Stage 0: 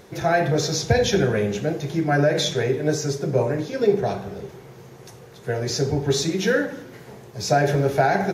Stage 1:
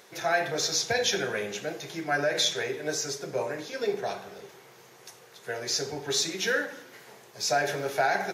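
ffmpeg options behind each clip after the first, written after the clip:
ffmpeg -i in.wav -af "highpass=frequency=1300:poles=1" out.wav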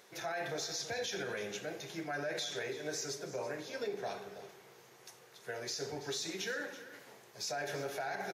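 ffmpeg -i in.wav -af "alimiter=limit=-23dB:level=0:latency=1:release=71,aecho=1:1:331:0.178,volume=-6.5dB" out.wav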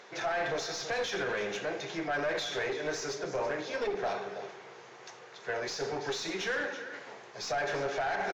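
ffmpeg -i in.wav -filter_complex "[0:a]aeval=exprs='clip(val(0),-1,0.0106)':channel_layout=same,aresample=16000,aresample=44100,asplit=2[link_01][link_02];[link_02]highpass=frequency=720:poles=1,volume=10dB,asoftclip=type=tanh:threshold=-28dB[link_03];[link_01][link_03]amix=inputs=2:normalize=0,lowpass=frequency=1700:poles=1,volume=-6dB,volume=7.5dB" out.wav

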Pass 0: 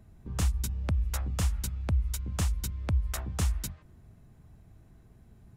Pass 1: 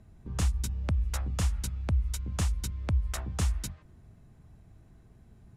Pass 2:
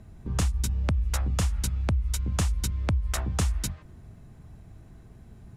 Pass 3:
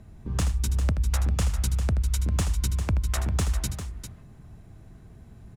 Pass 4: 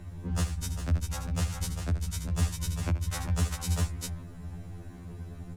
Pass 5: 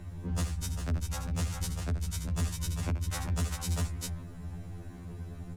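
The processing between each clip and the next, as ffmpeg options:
ffmpeg -i in.wav -af "lowpass=11000" out.wav
ffmpeg -i in.wav -af "acompressor=threshold=-29dB:ratio=6,volume=7dB" out.wav
ffmpeg -i in.wav -filter_complex "[0:a]asoftclip=type=hard:threshold=-19.5dB,asplit=2[link_01][link_02];[link_02]aecho=0:1:79|399:0.282|0.335[link_03];[link_01][link_03]amix=inputs=2:normalize=0" out.wav
ffmpeg -i in.wav -af "alimiter=level_in=4dB:limit=-24dB:level=0:latency=1:release=21,volume=-4dB,afftfilt=real='re*2*eq(mod(b,4),0)':imag='im*2*eq(mod(b,4),0)':win_size=2048:overlap=0.75,volume=8.5dB" out.wav
ffmpeg -i in.wav -af "asoftclip=type=tanh:threshold=-24.5dB" out.wav

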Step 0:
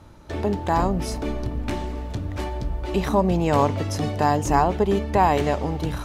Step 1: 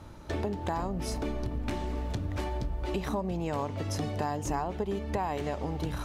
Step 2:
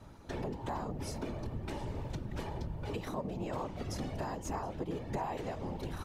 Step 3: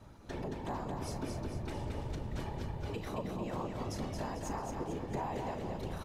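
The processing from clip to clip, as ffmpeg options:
ffmpeg -i in.wav -af "acompressor=threshold=-29dB:ratio=6" out.wav
ffmpeg -i in.wav -af "aecho=1:1:720:0.1,afftfilt=real='hypot(re,im)*cos(2*PI*random(0))':imag='hypot(re,im)*sin(2*PI*random(1))':win_size=512:overlap=0.75" out.wav
ffmpeg -i in.wav -filter_complex "[0:a]asplit=2[link_01][link_02];[link_02]adelay=37,volume=-14dB[link_03];[link_01][link_03]amix=inputs=2:normalize=0,aecho=1:1:223|446|669|892|1115|1338:0.596|0.28|0.132|0.0618|0.0291|0.0137,volume=-2dB" out.wav

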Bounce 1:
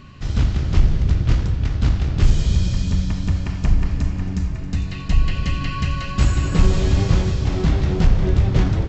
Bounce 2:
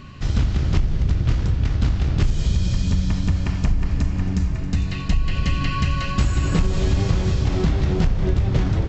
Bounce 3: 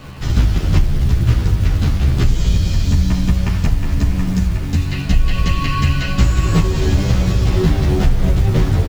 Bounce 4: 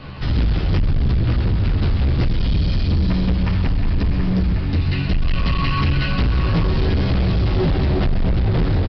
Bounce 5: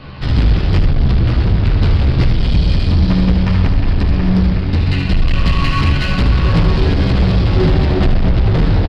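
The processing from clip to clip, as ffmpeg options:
ffmpeg -i in.wav -af "acompressor=threshold=-17dB:ratio=6,volume=2.5dB" out.wav
ffmpeg -i in.wav -filter_complex "[0:a]acrossover=split=320[link_01][link_02];[link_01]acrusher=bits=6:mix=0:aa=0.000001[link_03];[link_03][link_02]amix=inputs=2:normalize=0,asplit=2[link_04][link_05];[link_05]adelay=11.6,afreqshift=-1[link_06];[link_04][link_06]amix=inputs=2:normalize=1,volume=8dB" out.wav
ffmpeg -i in.wav -af "aecho=1:1:130:0.266,aresample=11025,asoftclip=type=hard:threshold=-14dB,aresample=44100" out.wav
ffmpeg -i in.wav -filter_complex "[0:a]asplit=2[link_01][link_02];[link_02]acrusher=bits=2:mix=0:aa=0.5,volume=-9.5dB[link_03];[link_01][link_03]amix=inputs=2:normalize=0,aecho=1:1:76:0.398,volume=1.5dB" out.wav

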